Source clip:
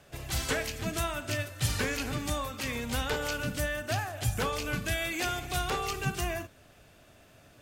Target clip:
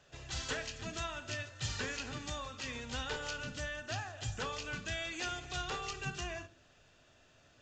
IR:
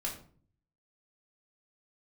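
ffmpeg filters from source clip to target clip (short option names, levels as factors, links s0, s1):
-filter_complex "[0:a]tiltshelf=f=1400:g=-4,bandreject=f=2200:w=8.8,asplit=2[s0][s1];[s1]lowpass=f=5700:w=0.5412,lowpass=f=5700:w=1.3066[s2];[1:a]atrim=start_sample=2205,asetrate=61740,aresample=44100[s3];[s2][s3]afir=irnorm=-1:irlink=0,volume=0.355[s4];[s0][s4]amix=inputs=2:normalize=0,volume=0.398" -ar 16000 -c:a pcm_mulaw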